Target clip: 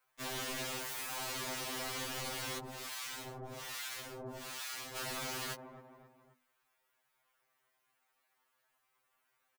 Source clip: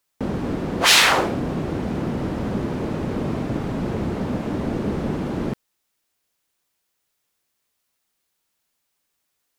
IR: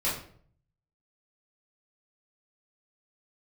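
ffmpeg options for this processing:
-filter_complex "[0:a]acrossover=split=580 2200:gain=0.224 1 0.0891[a][b][c];[a][b][c]amix=inputs=3:normalize=0,aecho=1:1:264|528|792:0.0631|0.0297|0.0139,acompressor=threshold=-31dB:ratio=5,asoftclip=type=tanh:threshold=-37dB,highshelf=f=5.9k:g=9.5,aeval=exprs='(mod(119*val(0)+1,2)-1)/119':c=same,asettb=1/sr,asplit=3[d][e][f];[d]atrim=end=2.584[g];[e]atrim=start=2.58:end=4.96,asetpts=PTS-STARTPTS,afade=t=in:d=0.004:c=qsin,afade=t=out:st=2.376:d=0.004:c=qsin,acrossover=split=960[h][i];[h]aeval=exprs='val(0)*(1-1/2+1/2*cos(2*PI*1.2*n/s))':c=same[j];[i]aeval=exprs='val(0)*(1-1/2-1/2*cos(2*PI*1.2*n/s))':c=same[k];[j][k]amix=inputs=2:normalize=0[l];[f]atrim=start=4.956[m];[g][l]acrossfade=d=0.004:c1=hsin:c2=qsin[n];[n][m]acrossfade=d=0.004:c1=qsin:c2=hsin,bandreject=f=50:t=h:w=6,bandreject=f=100:t=h:w=6,bandreject=f=150:t=h:w=6,bandreject=f=200:t=h:w=6,bandreject=f=250:t=h:w=6,afftfilt=real='re*2.45*eq(mod(b,6),0)':imag='im*2.45*eq(mod(b,6),0)':win_size=2048:overlap=0.75,volume=8dB"

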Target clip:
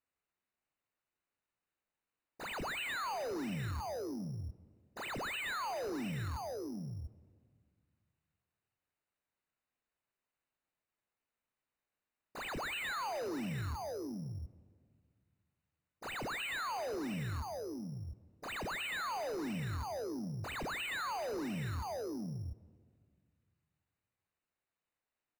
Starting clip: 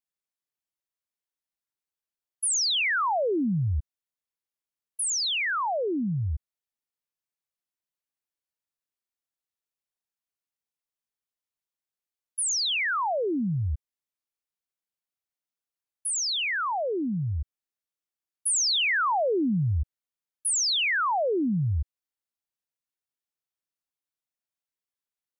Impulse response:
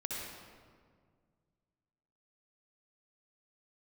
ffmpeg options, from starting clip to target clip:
-filter_complex "[0:a]aecho=1:1:707:0.237,asplit=3[a][b][c];[b]asetrate=52444,aresample=44100,atempo=0.840896,volume=-12dB[d];[c]asetrate=66075,aresample=44100,atempo=0.66742,volume=-8dB[e];[a][d][e]amix=inputs=3:normalize=0,lowshelf=f=420:g=-4,alimiter=level_in=3dB:limit=-24dB:level=0:latency=1:release=145,volume=-3dB,asoftclip=type=tanh:threshold=-37dB,highshelf=f=9.3k:g=-7.5,acrusher=samples=8:mix=1:aa=0.000001,asplit=2[f][g];[1:a]atrim=start_sample=2205[h];[g][h]afir=irnorm=-1:irlink=0,volume=-21dB[i];[f][i]amix=inputs=2:normalize=0,acrossover=split=5500[j][k];[k]acompressor=threshold=-54dB:ratio=4:attack=1:release=60[l];[j][l]amix=inputs=2:normalize=0,asuperstop=centerf=3300:order=20:qfactor=7.5,volume=1dB"

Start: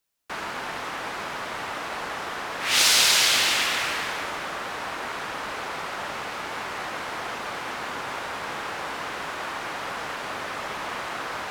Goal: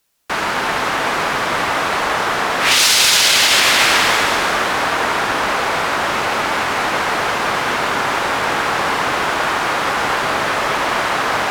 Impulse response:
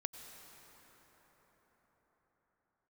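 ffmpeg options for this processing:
-filter_complex "[1:a]atrim=start_sample=2205,asetrate=38808,aresample=44100[a];[0:a][a]afir=irnorm=-1:irlink=0,alimiter=level_in=17dB:limit=-1dB:release=50:level=0:latency=1,volume=-2dB"

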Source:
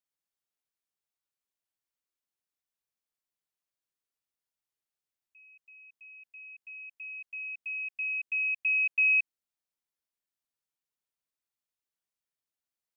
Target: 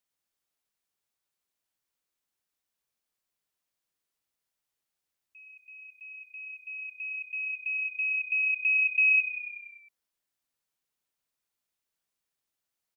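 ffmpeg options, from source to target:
-filter_complex "[0:a]asplit=8[a][b][c][d][e][f][g][h];[b]adelay=97,afreqshift=-31,volume=-13.5dB[i];[c]adelay=194,afreqshift=-62,volume=-17.5dB[j];[d]adelay=291,afreqshift=-93,volume=-21.5dB[k];[e]adelay=388,afreqshift=-124,volume=-25.5dB[l];[f]adelay=485,afreqshift=-155,volume=-29.6dB[m];[g]adelay=582,afreqshift=-186,volume=-33.6dB[n];[h]adelay=679,afreqshift=-217,volume=-37.6dB[o];[a][i][j][k][l][m][n][o]amix=inputs=8:normalize=0,asplit=2[p][q];[q]acompressor=threshold=-36dB:ratio=6,volume=-1.5dB[r];[p][r]amix=inputs=2:normalize=0"

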